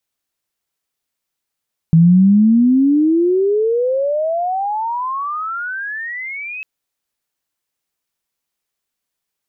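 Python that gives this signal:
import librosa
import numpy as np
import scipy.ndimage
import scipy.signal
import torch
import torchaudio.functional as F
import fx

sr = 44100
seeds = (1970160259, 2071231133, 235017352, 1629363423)

y = fx.chirp(sr, length_s=4.7, from_hz=160.0, to_hz=2600.0, law='logarithmic', from_db=-5.5, to_db=-25.0)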